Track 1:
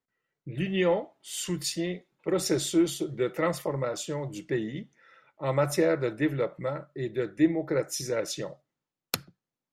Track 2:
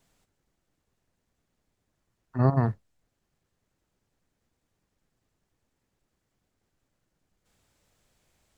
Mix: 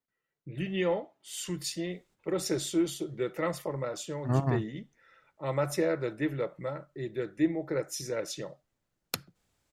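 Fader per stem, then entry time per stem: −4.0, −5.0 decibels; 0.00, 1.90 seconds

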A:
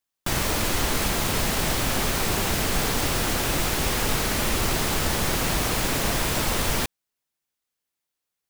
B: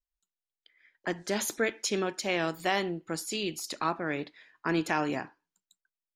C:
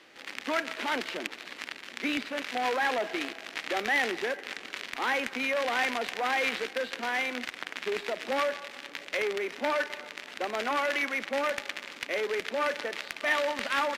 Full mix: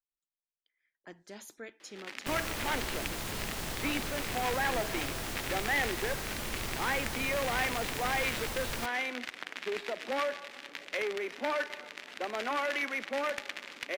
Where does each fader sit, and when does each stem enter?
−13.5, −17.0, −3.5 decibels; 2.00, 0.00, 1.80 seconds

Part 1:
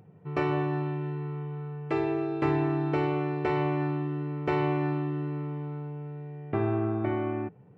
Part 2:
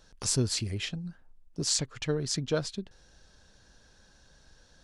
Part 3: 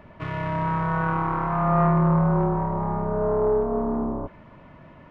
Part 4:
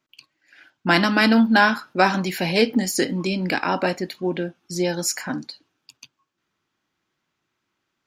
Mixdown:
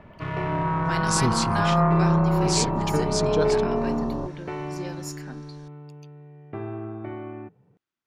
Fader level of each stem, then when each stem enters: −6.0, +2.5, −0.5, −14.5 decibels; 0.00, 0.85, 0.00, 0.00 seconds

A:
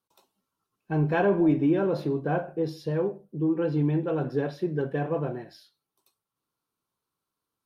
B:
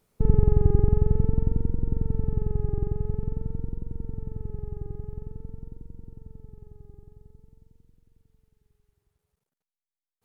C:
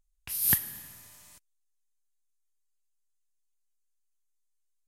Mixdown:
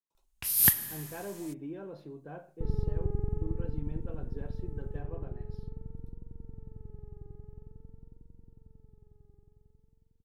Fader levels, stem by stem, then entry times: −18.0, −12.0, +2.5 decibels; 0.00, 2.40, 0.15 seconds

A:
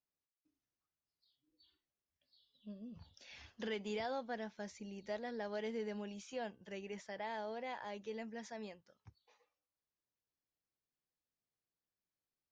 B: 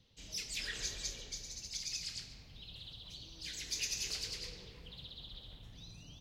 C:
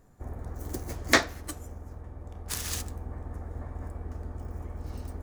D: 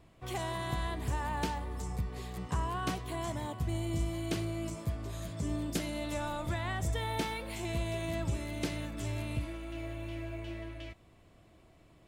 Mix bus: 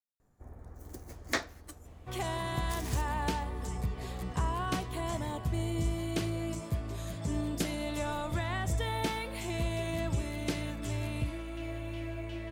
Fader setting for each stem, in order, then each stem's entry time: −12.5 dB, muted, −10.5 dB, +1.5 dB; 0.00 s, muted, 0.20 s, 1.85 s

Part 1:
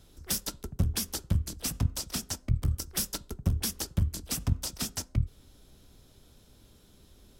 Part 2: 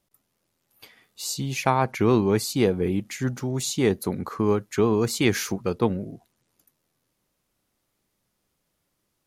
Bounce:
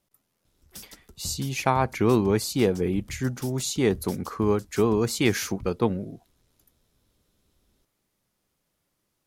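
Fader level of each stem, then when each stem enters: −12.5, −1.0 decibels; 0.45, 0.00 seconds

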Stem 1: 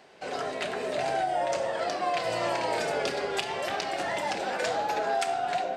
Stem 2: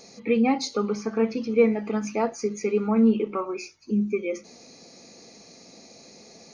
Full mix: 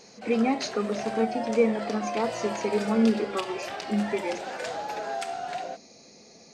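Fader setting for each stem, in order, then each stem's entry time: −4.5, −3.0 decibels; 0.00, 0.00 seconds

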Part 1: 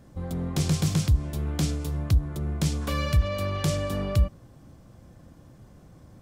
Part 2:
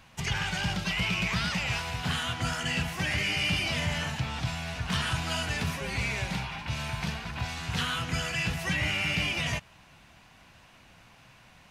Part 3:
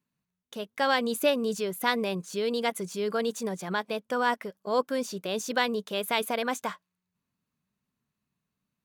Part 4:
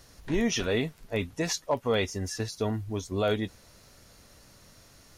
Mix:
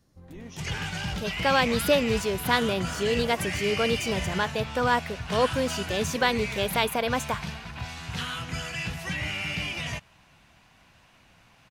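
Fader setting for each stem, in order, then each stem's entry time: −16.0, −2.5, +2.5, −18.5 decibels; 0.00, 0.40, 0.65, 0.00 seconds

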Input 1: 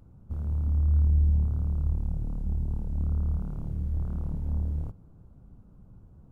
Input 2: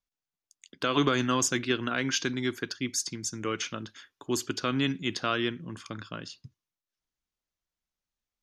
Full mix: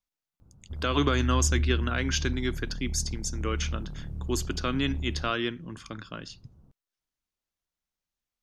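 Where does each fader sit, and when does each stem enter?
−4.5, −0.5 decibels; 0.40, 0.00 seconds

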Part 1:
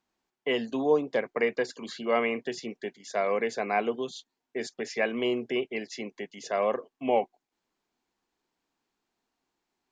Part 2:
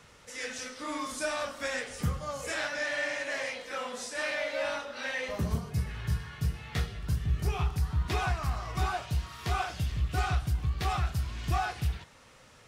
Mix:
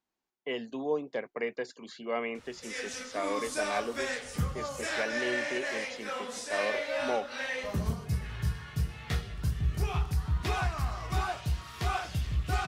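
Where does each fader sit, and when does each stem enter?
−7.0, −0.5 decibels; 0.00, 2.35 seconds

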